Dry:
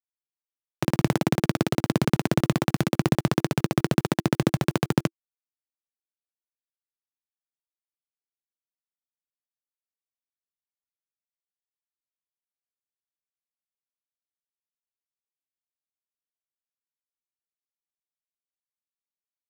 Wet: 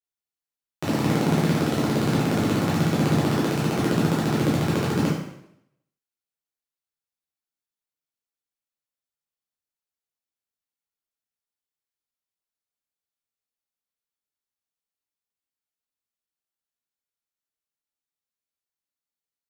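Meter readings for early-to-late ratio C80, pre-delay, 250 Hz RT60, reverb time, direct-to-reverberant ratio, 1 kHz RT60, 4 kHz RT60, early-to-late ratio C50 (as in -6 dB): 5.5 dB, 5 ms, 0.75 s, 0.75 s, -8.0 dB, 0.75 s, 0.70 s, 1.5 dB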